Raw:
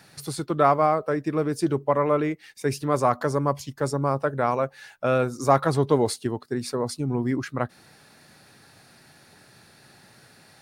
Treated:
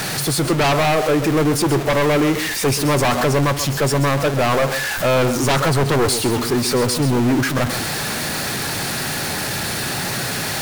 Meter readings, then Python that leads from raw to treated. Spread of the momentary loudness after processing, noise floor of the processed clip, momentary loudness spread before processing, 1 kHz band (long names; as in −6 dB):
5 LU, −24 dBFS, 9 LU, +4.0 dB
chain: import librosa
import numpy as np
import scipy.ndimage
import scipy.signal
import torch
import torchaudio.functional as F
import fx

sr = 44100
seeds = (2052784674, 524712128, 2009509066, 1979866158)

p1 = x + 0.5 * 10.0 ** (-19.5 / 20.0) * np.sign(x)
p2 = p1 + 10.0 ** (-13.5 / 20.0) * np.pad(p1, (int(132 * sr / 1000.0), 0))[:len(p1)]
p3 = fx.fold_sine(p2, sr, drive_db=14, ceiling_db=-3.0)
p4 = p2 + (p3 * 10.0 ** (-5.5 / 20.0))
p5 = fx.power_curve(p4, sr, exponent=2.0)
y = p5 * 10.0 ** (-1.5 / 20.0)